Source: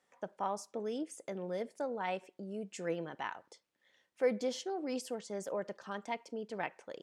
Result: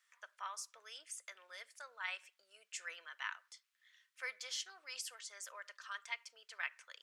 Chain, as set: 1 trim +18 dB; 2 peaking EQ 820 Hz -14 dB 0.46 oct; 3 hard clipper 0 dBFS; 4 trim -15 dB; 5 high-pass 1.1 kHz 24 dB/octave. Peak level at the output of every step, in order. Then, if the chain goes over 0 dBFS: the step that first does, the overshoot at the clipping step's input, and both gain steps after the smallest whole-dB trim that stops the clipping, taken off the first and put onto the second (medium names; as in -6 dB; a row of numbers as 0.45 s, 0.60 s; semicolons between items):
-1.5 dBFS, -3.5 dBFS, -3.5 dBFS, -18.5 dBFS, -23.5 dBFS; nothing clips